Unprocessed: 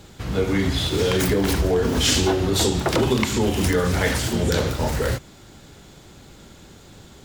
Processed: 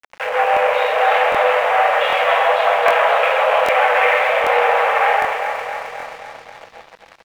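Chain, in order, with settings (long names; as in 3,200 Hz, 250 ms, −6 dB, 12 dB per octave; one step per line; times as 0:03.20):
comb filter 6 ms, depth 56%
convolution reverb RT60 0.50 s, pre-delay 4 ms, DRR 0 dB
fuzz pedal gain 24 dB, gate −33 dBFS
downward compressor 4 to 1, threshold −19 dBFS, peak gain reduction 5 dB
delay that swaps between a low-pass and a high-pass 133 ms, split 2,000 Hz, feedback 82%, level −3 dB
upward compression, threshold −34 dBFS
spectral tilt +2 dB per octave
single-sideband voice off tune +310 Hz 170–2,400 Hz
high-frequency loss of the air 60 metres
dead-zone distortion −44.5 dBFS
regular buffer underruns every 0.78 s, samples 1,024, repeat, from 0:00.52
level +6.5 dB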